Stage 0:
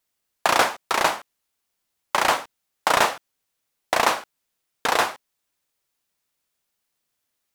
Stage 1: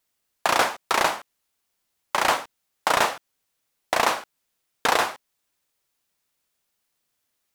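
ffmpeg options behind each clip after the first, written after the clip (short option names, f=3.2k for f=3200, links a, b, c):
-af "alimiter=limit=-8dB:level=0:latency=1:release=297,volume=1.5dB"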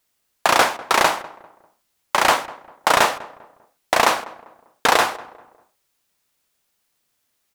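-filter_complex "[0:a]asplit=2[a][b];[b]adelay=198,lowpass=f=1.3k:p=1,volume=-17.5dB,asplit=2[c][d];[d]adelay=198,lowpass=f=1.3k:p=1,volume=0.39,asplit=2[e][f];[f]adelay=198,lowpass=f=1.3k:p=1,volume=0.39[g];[a][c][e][g]amix=inputs=4:normalize=0,volume=5dB"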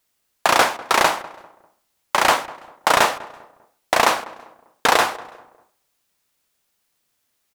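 -filter_complex "[0:a]asplit=2[a][b];[b]adelay=332.4,volume=-30dB,highshelf=f=4k:g=-7.48[c];[a][c]amix=inputs=2:normalize=0"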